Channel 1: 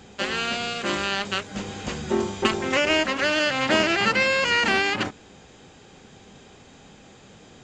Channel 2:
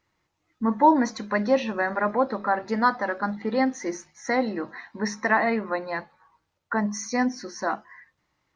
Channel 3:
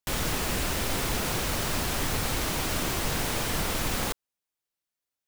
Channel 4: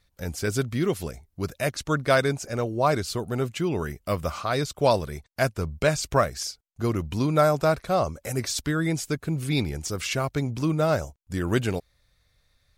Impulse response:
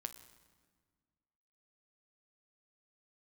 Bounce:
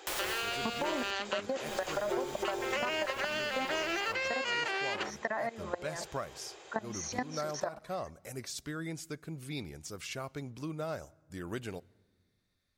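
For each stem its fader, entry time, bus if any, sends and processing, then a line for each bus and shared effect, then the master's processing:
-0.5 dB, 0.00 s, bus B, no send, none
+2.5 dB, 0.00 s, bus A, no send, peaking EQ 610 Hz +13 dB 0.24 oct; level held to a coarse grid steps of 21 dB
-1.0 dB, 0.00 s, muted 1.11–1.66 s, bus B, send -13 dB, peak limiter -21 dBFS, peak gain reduction 5 dB; auto duck -21 dB, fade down 0.25 s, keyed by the second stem
-13.5 dB, 0.00 s, bus A, send -11 dB, none
bus A: 0.0 dB, bass shelf 110 Hz -11 dB; compression, threshold -24 dBFS, peak gain reduction 8.5 dB
bus B: 0.0 dB, elliptic high-pass 340 Hz; peak limiter -14.5 dBFS, peak gain reduction 8 dB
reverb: on, RT60 1.6 s, pre-delay 8 ms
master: compression 3:1, threshold -33 dBFS, peak gain reduction 11 dB

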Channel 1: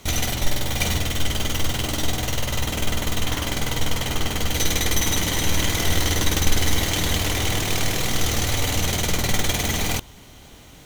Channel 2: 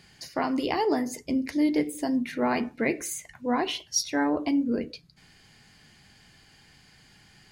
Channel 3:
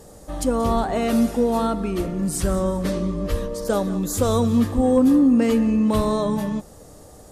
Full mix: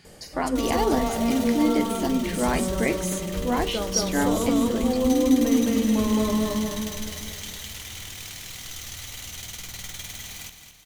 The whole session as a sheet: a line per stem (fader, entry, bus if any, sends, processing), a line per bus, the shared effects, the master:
-5.0 dB, 0.50 s, no send, echo send -9.5 dB, amplifier tone stack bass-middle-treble 5-5-5
+1.0 dB, 0.00 s, no send, no echo send, none
+0.5 dB, 0.05 s, no send, echo send -8 dB, de-hum 48.8 Hz, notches 37; auto duck -8 dB, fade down 0.30 s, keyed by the second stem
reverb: none
echo: feedback delay 217 ms, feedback 49%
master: none

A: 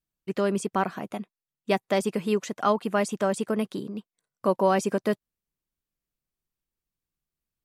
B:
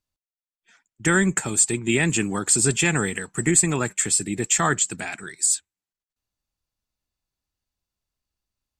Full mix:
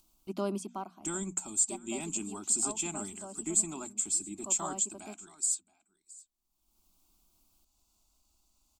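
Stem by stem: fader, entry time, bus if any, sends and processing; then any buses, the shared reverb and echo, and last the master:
-3.5 dB, 0.00 s, no send, no echo send, auto duck -14 dB, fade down 0.50 s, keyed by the second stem
-13.0 dB, 0.00 s, no send, echo send -22 dB, peaking EQ 7.3 kHz +6.5 dB 0.33 oct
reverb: none
echo: delay 674 ms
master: static phaser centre 480 Hz, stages 6; upward compressor, threshold -49 dBFS; hum notches 60/120/180/240 Hz

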